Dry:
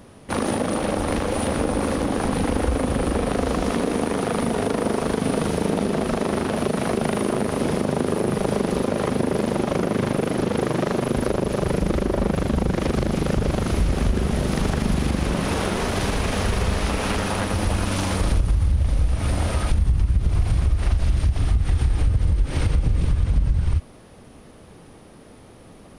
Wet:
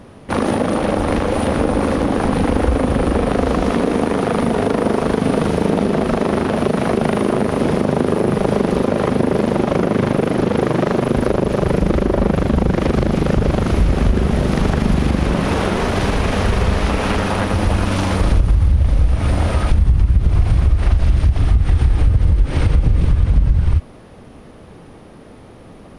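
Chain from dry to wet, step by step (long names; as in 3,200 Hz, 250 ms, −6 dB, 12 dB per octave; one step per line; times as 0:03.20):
high-shelf EQ 5,000 Hz −10.5 dB
level +6 dB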